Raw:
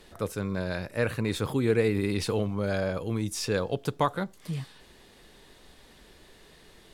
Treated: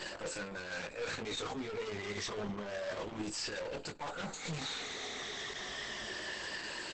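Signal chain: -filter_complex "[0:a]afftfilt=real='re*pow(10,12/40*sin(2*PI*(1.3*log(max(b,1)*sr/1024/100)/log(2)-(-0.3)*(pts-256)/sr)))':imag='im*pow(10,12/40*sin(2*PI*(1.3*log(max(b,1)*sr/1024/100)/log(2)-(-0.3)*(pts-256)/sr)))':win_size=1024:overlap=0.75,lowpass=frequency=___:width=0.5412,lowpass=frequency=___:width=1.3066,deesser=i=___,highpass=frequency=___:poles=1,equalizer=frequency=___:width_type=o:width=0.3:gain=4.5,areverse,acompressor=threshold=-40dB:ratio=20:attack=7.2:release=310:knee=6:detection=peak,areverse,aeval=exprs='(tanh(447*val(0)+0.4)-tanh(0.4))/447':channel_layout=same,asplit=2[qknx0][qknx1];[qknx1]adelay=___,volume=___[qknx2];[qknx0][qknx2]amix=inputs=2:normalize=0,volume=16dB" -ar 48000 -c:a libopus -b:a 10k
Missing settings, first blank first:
9.8k, 9.8k, 0.5, 580, 1.8k, 19, -5.5dB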